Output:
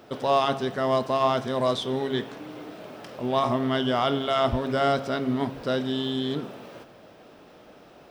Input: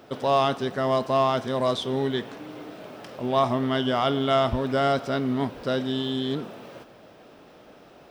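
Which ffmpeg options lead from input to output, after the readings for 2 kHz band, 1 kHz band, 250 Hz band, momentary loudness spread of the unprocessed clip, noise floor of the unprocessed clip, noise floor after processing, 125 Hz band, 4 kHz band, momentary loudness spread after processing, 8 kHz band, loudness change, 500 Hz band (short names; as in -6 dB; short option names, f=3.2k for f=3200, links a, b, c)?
0.0 dB, -0.5 dB, -0.5 dB, 17 LU, -51 dBFS, -51 dBFS, -1.5 dB, 0.0 dB, 17 LU, n/a, -0.5 dB, -1.0 dB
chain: -af "bandreject=f=135.3:t=h:w=4,bandreject=f=270.6:t=h:w=4,bandreject=f=405.9:t=h:w=4,bandreject=f=541.2:t=h:w=4,bandreject=f=676.5:t=h:w=4,bandreject=f=811.8:t=h:w=4,bandreject=f=947.1:t=h:w=4,bandreject=f=1.0824k:t=h:w=4,bandreject=f=1.2177k:t=h:w=4,bandreject=f=1.353k:t=h:w=4,bandreject=f=1.4883k:t=h:w=4,bandreject=f=1.6236k:t=h:w=4,bandreject=f=1.7589k:t=h:w=4,bandreject=f=1.8942k:t=h:w=4,bandreject=f=2.0295k:t=h:w=4,bandreject=f=2.1648k:t=h:w=4,bandreject=f=2.3001k:t=h:w=4,bandreject=f=2.4354k:t=h:w=4,bandreject=f=2.5707k:t=h:w=4,bandreject=f=2.706k:t=h:w=4,bandreject=f=2.8413k:t=h:w=4,bandreject=f=2.9766k:t=h:w=4,bandreject=f=3.1119k:t=h:w=4,bandreject=f=3.2472k:t=h:w=4,bandreject=f=3.3825k:t=h:w=4,bandreject=f=3.5178k:t=h:w=4,bandreject=f=3.6531k:t=h:w=4"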